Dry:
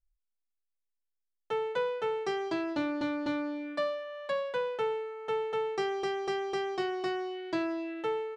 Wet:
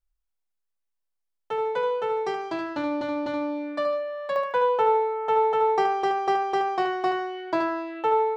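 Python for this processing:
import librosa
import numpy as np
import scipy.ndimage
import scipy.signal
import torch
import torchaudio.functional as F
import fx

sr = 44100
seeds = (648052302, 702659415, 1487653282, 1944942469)

y = fx.peak_eq(x, sr, hz=860.0, db=fx.steps((0.0, 6.0), (4.36, 14.5)), octaves=1.5)
y = fx.echo_feedback(y, sr, ms=75, feedback_pct=31, wet_db=-7.5)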